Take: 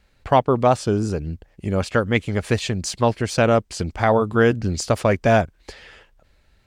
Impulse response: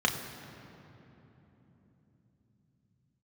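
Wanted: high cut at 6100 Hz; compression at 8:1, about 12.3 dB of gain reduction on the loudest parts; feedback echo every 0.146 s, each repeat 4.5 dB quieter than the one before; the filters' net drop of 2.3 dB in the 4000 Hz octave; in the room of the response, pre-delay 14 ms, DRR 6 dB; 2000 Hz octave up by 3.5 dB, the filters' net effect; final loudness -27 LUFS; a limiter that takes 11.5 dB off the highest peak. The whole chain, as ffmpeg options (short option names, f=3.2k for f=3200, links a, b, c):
-filter_complex "[0:a]lowpass=6.1k,equalizer=f=2k:t=o:g=5.5,equalizer=f=4k:t=o:g=-4,acompressor=threshold=-24dB:ratio=8,alimiter=limit=-22dB:level=0:latency=1,aecho=1:1:146|292|438|584|730|876|1022|1168|1314:0.596|0.357|0.214|0.129|0.0772|0.0463|0.0278|0.0167|0.01,asplit=2[a][b];[1:a]atrim=start_sample=2205,adelay=14[c];[b][c]afir=irnorm=-1:irlink=0,volume=-17dB[d];[a][d]amix=inputs=2:normalize=0,volume=3dB"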